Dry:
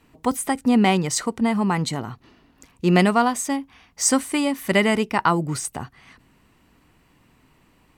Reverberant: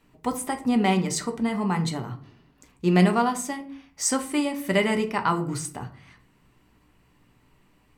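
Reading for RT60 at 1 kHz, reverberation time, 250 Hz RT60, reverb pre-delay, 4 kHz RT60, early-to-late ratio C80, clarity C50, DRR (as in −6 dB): 0.45 s, 0.50 s, 0.75 s, 5 ms, 0.30 s, 18.0 dB, 13.5 dB, 5.0 dB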